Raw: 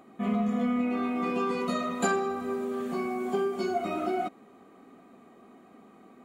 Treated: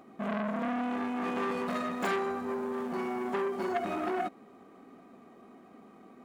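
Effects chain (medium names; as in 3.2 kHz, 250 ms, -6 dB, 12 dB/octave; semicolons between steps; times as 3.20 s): median filter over 9 samples; transformer saturation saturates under 1.6 kHz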